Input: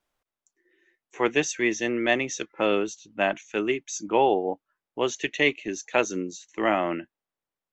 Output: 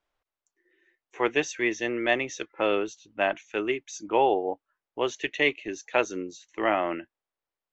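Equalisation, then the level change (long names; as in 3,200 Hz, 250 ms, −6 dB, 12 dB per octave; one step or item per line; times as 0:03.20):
high-frequency loss of the air 100 metres
parametric band 190 Hz −8 dB 1.1 octaves
0.0 dB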